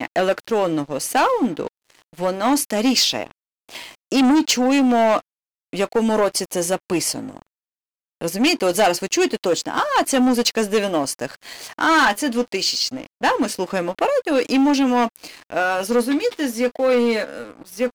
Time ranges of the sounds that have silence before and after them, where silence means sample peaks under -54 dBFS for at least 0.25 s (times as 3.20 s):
3.69–5.22 s
5.73–7.47 s